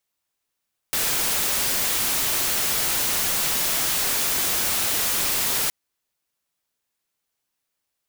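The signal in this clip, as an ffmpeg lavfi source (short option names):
-f lavfi -i "anoisesrc=c=white:a=0.123:d=4.77:r=44100:seed=1"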